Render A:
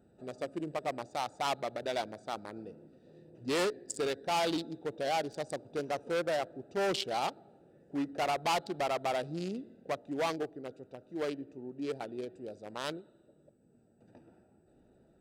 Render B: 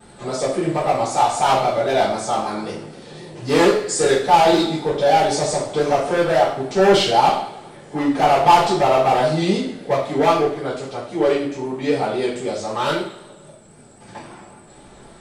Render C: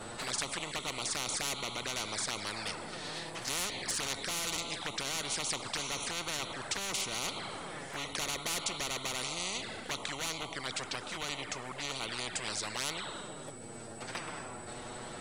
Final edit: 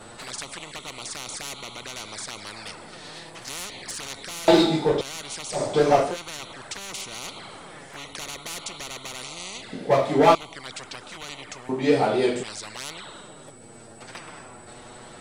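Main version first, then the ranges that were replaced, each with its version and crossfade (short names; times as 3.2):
C
4.48–5.01 from B
5.57–6.1 from B, crossfade 0.16 s
9.73–10.35 from B
11.69–12.43 from B
not used: A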